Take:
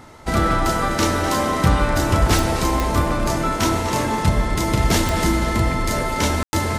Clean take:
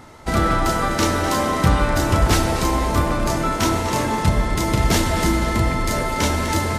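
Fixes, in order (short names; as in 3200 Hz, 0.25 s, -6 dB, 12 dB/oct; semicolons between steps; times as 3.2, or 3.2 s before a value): de-click; room tone fill 6.43–6.53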